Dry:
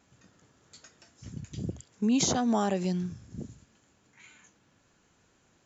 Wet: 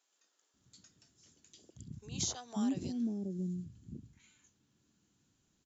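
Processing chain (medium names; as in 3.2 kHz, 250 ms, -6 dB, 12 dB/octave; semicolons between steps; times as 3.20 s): high-order bell 1.1 kHz -8.5 dB 2.7 oct; bands offset in time highs, lows 540 ms, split 490 Hz; trim -7 dB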